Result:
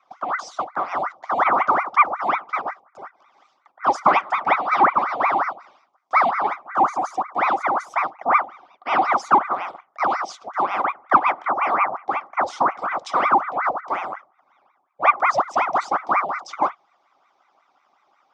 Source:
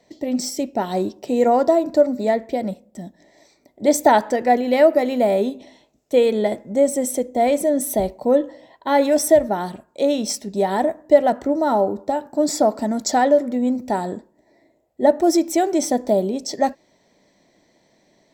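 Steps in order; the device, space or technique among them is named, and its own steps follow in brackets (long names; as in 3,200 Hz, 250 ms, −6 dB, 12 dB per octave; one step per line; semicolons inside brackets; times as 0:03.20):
voice changer toy (ring modulator whose carrier an LFO sweeps 1,000 Hz, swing 80%, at 5.5 Hz; loudspeaker in its box 420–4,800 Hz, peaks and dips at 460 Hz −9 dB, 760 Hz +7 dB, 1,200 Hz +7 dB, 1,700 Hz −10 dB, 2,700 Hz −6 dB, 4,200 Hz −10 dB)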